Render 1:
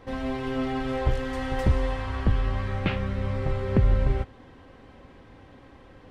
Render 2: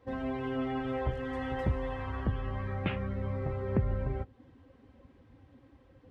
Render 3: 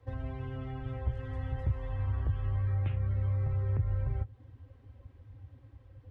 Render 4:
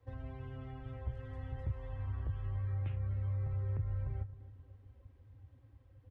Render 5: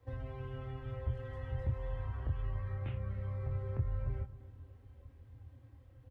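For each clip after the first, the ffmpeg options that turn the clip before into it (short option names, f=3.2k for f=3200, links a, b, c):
-filter_complex "[0:a]afftdn=nr=13:nf=-39,asplit=2[a][b];[b]acompressor=threshold=-32dB:ratio=6,volume=1.5dB[c];[a][c]amix=inputs=2:normalize=0,highpass=60,volume=-8.5dB"
-filter_complex "[0:a]lowshelf=f=140:t=q:w=3:g=9,acrossover=split=190|690[a][b][c];[a]acompressor=threshold=-25dB:ratio=4[d];[b]acompressor=threshold=-44dB:ratio=4[e];[c]acompressor=threshold=-48dB:ratio=4[f];[d][e][f]amix=inputs=3:normalize=0,volume=-3.5dB"
-filter_complex "[0:a]asplit=2[a][b];[b]adelay=265,lowpass=f=2k:p=1,volume=-17dB,asplit=2[c][d];[d]adelay=265,lowpass=f=2k:p=1,volume=0.54,asplit=2[e][f];[f]adelay=265,lowpass=f=2k:p=1,volume=0.54,asplit=2[g][h];[h]adelay=265,lowpass=f=2k:p=1,volume=0.54,asplit=2[i][j];[j]adelay=265,lowpass=f=2k:p=1,volume=0.54[k];[a][c][e][g][i][k]amix=inputs=6:normalize=0,volume=-7dB"
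-filter_complex "[0:a]asplit=2[a][b];[b]adelay=25,volume=-4.5dB[c];[a][c]amix=inputs=2:normalize=0,volume=2.5dB"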